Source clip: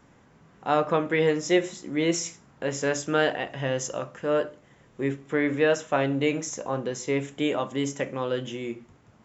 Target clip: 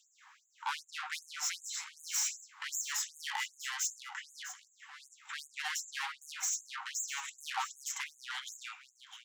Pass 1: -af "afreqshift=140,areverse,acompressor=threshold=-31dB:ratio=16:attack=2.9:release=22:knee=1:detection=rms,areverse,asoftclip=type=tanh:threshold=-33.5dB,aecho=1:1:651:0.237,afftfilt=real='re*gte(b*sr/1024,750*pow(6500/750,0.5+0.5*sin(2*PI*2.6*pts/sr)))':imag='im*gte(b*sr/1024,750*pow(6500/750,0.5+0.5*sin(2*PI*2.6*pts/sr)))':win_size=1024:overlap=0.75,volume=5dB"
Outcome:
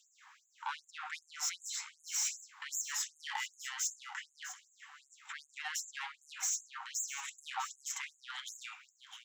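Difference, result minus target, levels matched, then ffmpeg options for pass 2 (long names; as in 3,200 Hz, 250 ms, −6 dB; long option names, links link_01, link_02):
downward compressor: peak gain reduction +8 dB
-af "afreqshift=140,areverse,acompressor=threshold=-22.5dB:ratio=16:attack=2.9:release=22:knee=1:detection=rms,areverse,asoftclip=type=tanh:threshold=-33.5dB,aecho=1:1:651:0.237,afftfilt=real='re*gte(b*sr/1024,750*pow(6500/750,0.5+0.5*sin(2*PI*2.6*pts/sr)))':imag='im*gte(b*sr/1024,750*pow(6500/750,0.5+0.5*sin(2*PI*2.6*pts/sr)))':win_size=1024:overlap=0.75,volume=5dB"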